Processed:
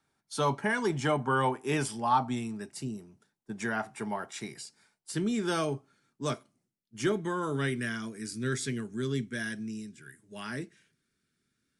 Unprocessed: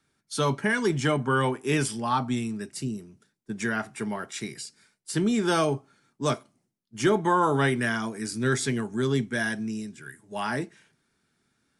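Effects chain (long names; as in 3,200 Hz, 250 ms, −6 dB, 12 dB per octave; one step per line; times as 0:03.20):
parametric band 820 Hz +8.5 dB 0.83 octaves, from 0:05.12 −3 dB, from 0:07.12 −13 dB
level −5.5 dB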